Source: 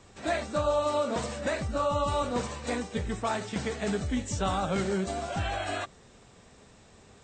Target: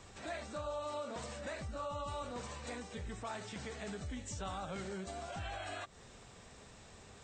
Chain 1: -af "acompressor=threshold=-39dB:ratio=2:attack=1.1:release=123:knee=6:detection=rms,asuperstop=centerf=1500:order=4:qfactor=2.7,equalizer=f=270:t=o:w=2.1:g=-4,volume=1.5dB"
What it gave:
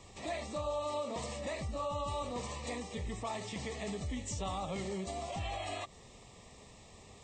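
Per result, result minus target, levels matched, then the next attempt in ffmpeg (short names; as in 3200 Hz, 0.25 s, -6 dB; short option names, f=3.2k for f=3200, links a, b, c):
compressor: peak gain reduction -4.5 dB; 2000 Hz band -3.5 dB
-af "acompressor=threshold=-48dB:ratio=2:attack=1.1:release=123:knee=6:detection=rms,asuperstop=centerf=1500:order=4:qfactor=2.7,equalizer=f=270:t=o:w=2.1:g=-4,volume=1.5dB"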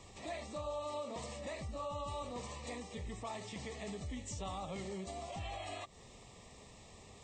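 2000 Hz band -3.0 dB
-af "acompressor=threshold=-48dB:ratio=2:attack=1.1:release=123:knee=6:detection=rms,equalizer=f=270:t=o:w=2.1:g=-4,volume=1.5dB"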